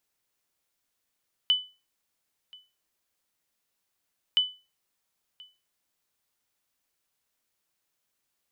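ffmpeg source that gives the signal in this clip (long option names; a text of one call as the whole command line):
ffmpeg -f lavfi -i "aevalsrc='0.178*(sin(2*PI*3000*mod(t,2.87))*exp(-6.91*mod(t,2.87)/0.3)+0.0531*sin(2*PI*3000*max(mod(t,2.87)-1.03,0))*exp(-6.91*max(mod(t,2.87)-1.03,0)/0.3))':duration=5.74:sample_rate=44100" out.wav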